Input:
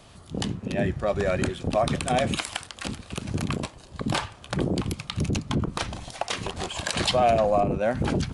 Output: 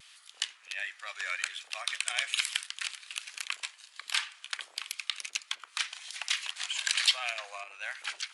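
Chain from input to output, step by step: ladder high-pass 1.5 kHz, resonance 25%; vibrato 1.3 Hz 39 cents; trim +6 dB

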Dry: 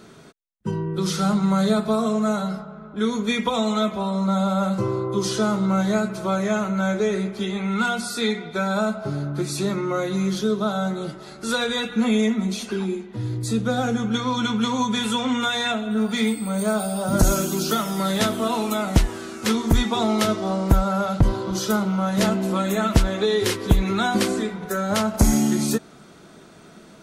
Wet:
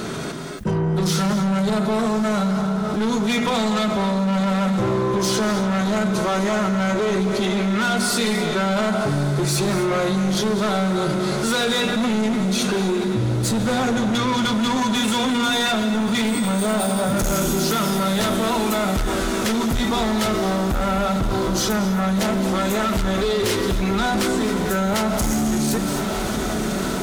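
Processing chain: level rider gain up to 12 dB; saturation -16.5 dBFS, distortion -8 dB; echo that smears into a reverb 1137 ms, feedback 74%, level -14.5 dB; gated-style reverb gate 290 ms rising, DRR 10 dB; level flattener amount 70%; trim -4 dB

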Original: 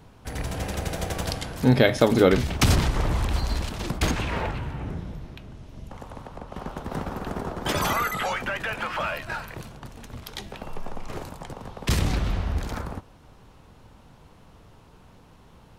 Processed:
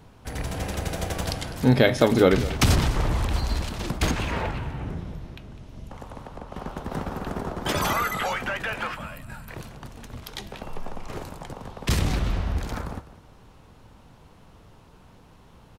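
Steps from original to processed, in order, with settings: time-frequency box 8.94–9.48 s, 290–7000 Hz -12 dB; delay 203 ms -16 dB

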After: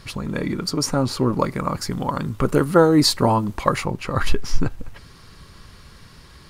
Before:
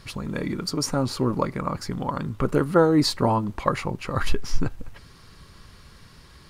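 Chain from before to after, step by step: 1.39–3.85 s: treble shelf 5.6 kHz +7.5 dB; trim +3.5 dB

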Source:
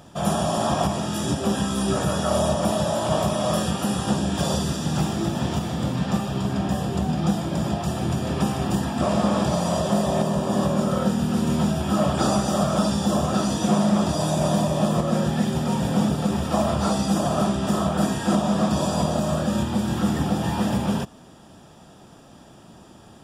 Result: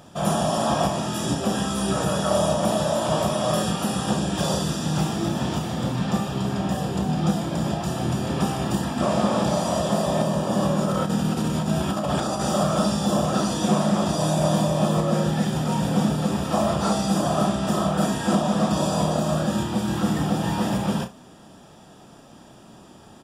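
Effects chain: peaking EQ 62 Hz -4.5 dB 1.6 oct; 10.83–12.48 s: compressor with a negative ratio -23 dBFS, ratio -0.5; early reflections 32 ms -8 dB, 66 ms -17.5 dB

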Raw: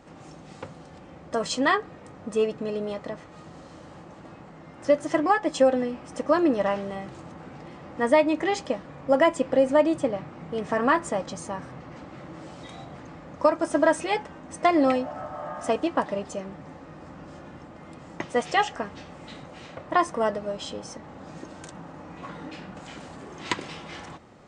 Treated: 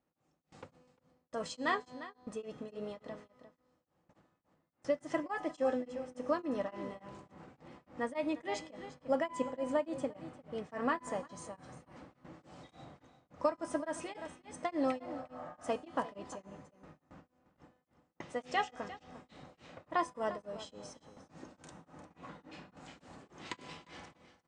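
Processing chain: gate with hold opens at -33 dBFS; feedback comb 250 Hz, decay 1.3 s, mix 70%; on a send: delay 351 ms -14 dB; on the sum: tremolo of two beating tones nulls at 3.5 Hz

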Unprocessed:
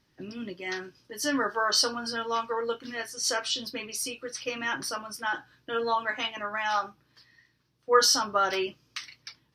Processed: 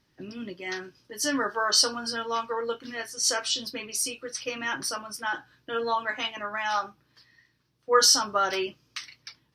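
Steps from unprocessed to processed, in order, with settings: dynamic bell 7.9 kHz, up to +6 dB, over -42 dBFS, Q 0.9

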